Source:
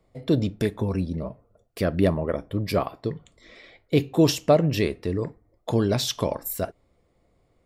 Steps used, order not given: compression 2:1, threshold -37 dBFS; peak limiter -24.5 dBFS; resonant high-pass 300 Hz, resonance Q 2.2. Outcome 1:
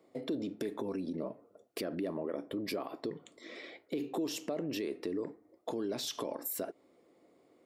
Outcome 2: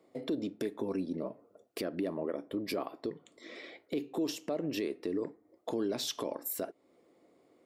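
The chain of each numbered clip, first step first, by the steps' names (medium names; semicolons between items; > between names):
peak limiter > resonant high-pass > compression; resonant high-pass > compression > peak limiter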